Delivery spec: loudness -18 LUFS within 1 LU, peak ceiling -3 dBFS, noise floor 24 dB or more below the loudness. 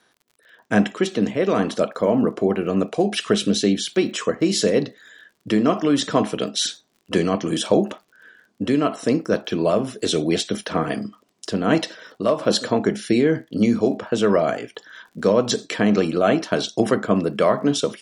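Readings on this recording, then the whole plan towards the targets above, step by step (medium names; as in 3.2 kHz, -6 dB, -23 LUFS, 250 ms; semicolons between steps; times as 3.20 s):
tick rate 50 per s; loudness -21.0 LUFS; peak level -3.5 dBFS; loudness target -18.0 LUFS
-> de-click; trim +3 dB; peak limiter -3 dBFS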